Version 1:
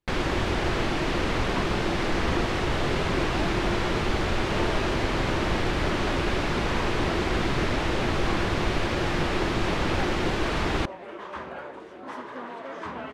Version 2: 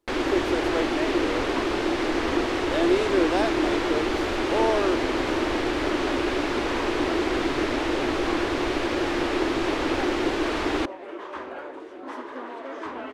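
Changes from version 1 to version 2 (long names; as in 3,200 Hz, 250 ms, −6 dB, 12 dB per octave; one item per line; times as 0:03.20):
speech +10.5 dB
master: add low shelf with overshoot 230 Hz −7.5 dB, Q 3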